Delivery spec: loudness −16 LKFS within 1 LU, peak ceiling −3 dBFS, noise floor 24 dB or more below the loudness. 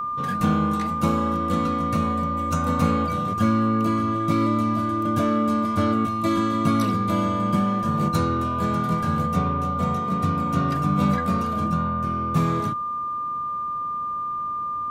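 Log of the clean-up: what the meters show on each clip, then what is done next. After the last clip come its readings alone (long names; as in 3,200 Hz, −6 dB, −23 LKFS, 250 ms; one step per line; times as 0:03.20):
interfering tone 1,200 Hz; level of the tone −31 dBFS; integrated loudness −23.0 LKFS; sample peak −7.5 dBFS; target loudness −16.0 LKFS
→ notch filter 1,200 Hz, Q 30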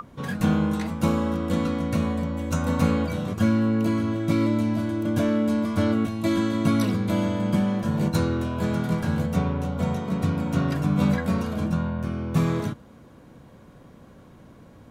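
interfering tone none found; integrated loudness −24.5 LKFS; sample peak −8.0 dBFS; target loudness −16.0 LKFS
→ level +8.5 dB
brickwall limiter −3 dBFS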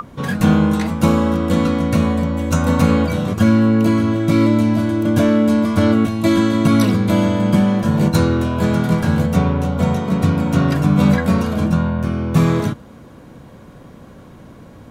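integrated loudness −16.0 LKFS; sample peak −3.0 dBFS; background noise floor −41 dBFS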